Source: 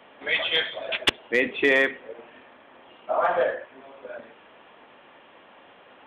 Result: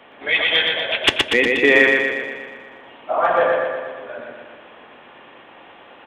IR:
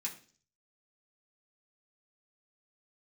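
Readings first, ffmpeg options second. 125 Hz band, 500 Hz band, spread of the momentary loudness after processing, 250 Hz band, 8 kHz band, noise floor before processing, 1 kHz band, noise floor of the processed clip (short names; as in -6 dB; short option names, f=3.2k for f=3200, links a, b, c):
+8.0 dB, +6.5 dB, 20 LU, +7.5 dB, n/a, -53 dBFS, +6.5 dB, -45 dBFS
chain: -filter_complex "[0:a]lowshelf=f=130:g=4,aecho=1:1:120|240|360|480|600|720|840|960|1080:0.708|0.418|0.246|0.145|0.0858|0.0506|0.0299|0.0176|0.0104,asplit=2[a][b];[1:a]atrim=start_sample=2205,lowpass=8.7k[c];[b][c]afir=irnorm=-1:irlink=0,volume=-8.5dB[d];[a][d]amix=inputs=2:normalize=0,volume=3.5dB"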